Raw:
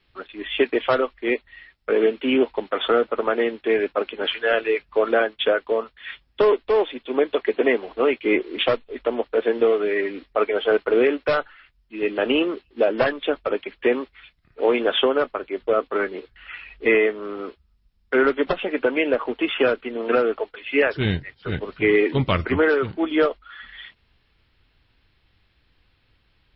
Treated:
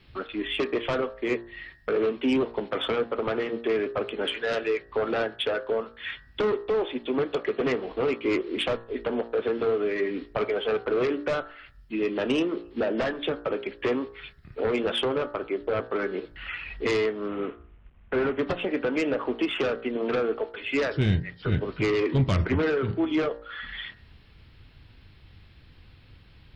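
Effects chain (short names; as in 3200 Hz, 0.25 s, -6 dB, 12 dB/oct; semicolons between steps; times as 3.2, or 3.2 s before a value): 17.28–18.39 CVSD 16 kbps; sine folder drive 8 dB, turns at -5.5 dBFS; compressor 2:1, threshold -30 dBFS, peak gain reduction 12 dB; bell 110 Hz +9 dB 2.8 oct; de-hum 58.26 Hz, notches 33; gain -5.5 dB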